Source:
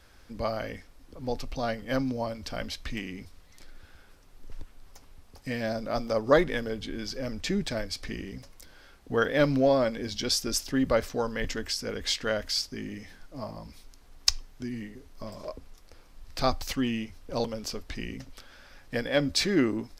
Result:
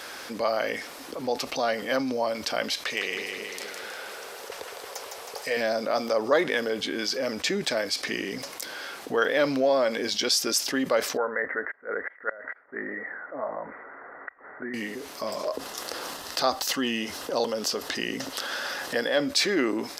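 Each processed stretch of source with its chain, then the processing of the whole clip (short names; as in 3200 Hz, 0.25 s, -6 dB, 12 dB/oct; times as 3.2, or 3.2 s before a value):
2.85–5.57 resonant low shelf 360 Hz -7 dB, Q 3 + split-band echo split 510 Hz, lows 0.224 s, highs 0.159 s, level -7 dB
11.17–14.74 tilt shelf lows -6 dB, about 790 Hz + flipped gate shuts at -15 dBFS, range -36 dB + rippled Chebyshev low-pass 2000 Hz, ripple 6 dB
15.47–19.21 notch 2300 Hz, Q 5.5 + upward compressor, threshold -31 dBFS
whole clip: HPF 400 Hz 12 dB/oct; fast leveller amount 50%; gain -1 dB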